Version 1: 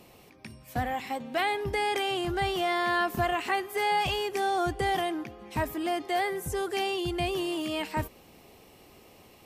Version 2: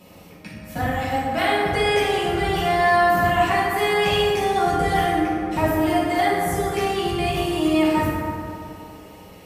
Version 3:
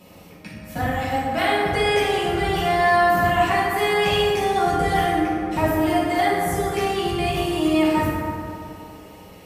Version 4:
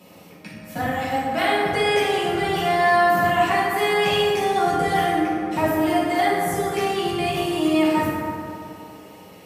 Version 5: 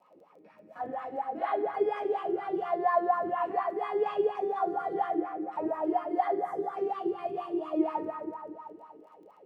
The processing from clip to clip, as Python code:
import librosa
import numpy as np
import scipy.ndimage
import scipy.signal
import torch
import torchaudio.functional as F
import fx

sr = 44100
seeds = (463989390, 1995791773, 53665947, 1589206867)

y1 = fx.rev_fdn(x, sr, rt60_s=2.6, lf_ratio=1.0, hf_ratio=0.4, size_ms=32.0, drr_db=-9.0)
y2 = y1
y3 = scipy.signal.sosfilt(scipy.signal.butter(2, 130.0, 'highpass', fs=sr, output='sos'), y2)
y4 = fx.wah_lfo(y3, sr, hz=4.2, low_hz=340.0, high_hz=1200.0, q=7.0)
y4 = fx.dmg_crackle(y4, sr, seeds[0], per_s=18.0, level_db=-57.0)